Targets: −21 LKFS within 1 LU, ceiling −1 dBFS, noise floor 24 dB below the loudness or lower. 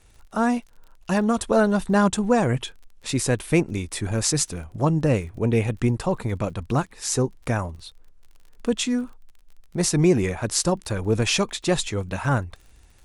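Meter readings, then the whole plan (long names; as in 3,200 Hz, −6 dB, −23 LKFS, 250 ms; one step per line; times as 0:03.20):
crackle rate 36 per second; integrated loudness −23.5 LKFS; sample peak −5.0 dBFS; target loudness −21.0 LKFS
→ click removal
level +2.5 dB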